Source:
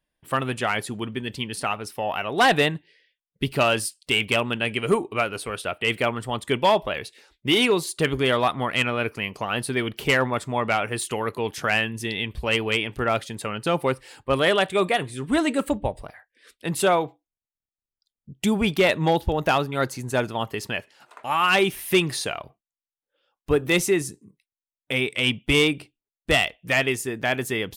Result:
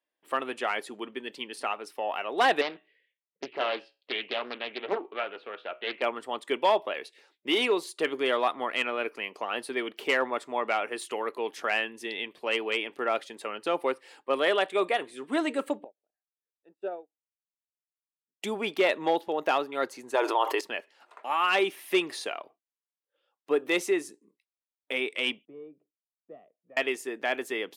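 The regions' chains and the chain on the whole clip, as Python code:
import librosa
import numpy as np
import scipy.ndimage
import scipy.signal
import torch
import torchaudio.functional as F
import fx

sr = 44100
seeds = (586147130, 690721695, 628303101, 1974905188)

y = fx.chain(x, sr, fx.lowpass(hz=3300.0, slope=24),
    fx.comb_fb(f0_hz=62.0, decay_s=0.3, harmonics='all', damping=0.0, mix_pct=50),
    fx.doppler_dist(depth_ms=0.89), at=(2.61, 6.02))
y = fx.chain(y, sr, fx.moving_average(points=41),
    fx.low_shelf(hz=350.0, db=-11.5),
    fx.upward_expand(threshold_db=-46.0, expansion=2.5), at=(15.84, 18.42))
y = fx.chain(y, sr, fx.brickwall_highpass(low_hz=280.0),
    fx.peak_eq(hz=960.0, db=9.0, octaves=0.36),
    fx.env_flatten(amount_pct=70), at=(20.14, 20.61))
y = fx.chain(y, sr, fx.ladder_bandpass(hz=180.0, resonance_pct=25),
    fx.comb(ms=1.7, depth=0.46), at=(25.45, 26.77))
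y = scipy.signal.sosfilt(scipy.signal.butter(4, 300.0, 'highpass', fs=sr, output='sos'), y)
y = fx.high_shelf(y, sr, hz=5400.0, db=-10.0)
y = fx.notch(y, sr, hz=1500.0, q=27.0)
y = y * librosa.db_to_amplitude(-4.0)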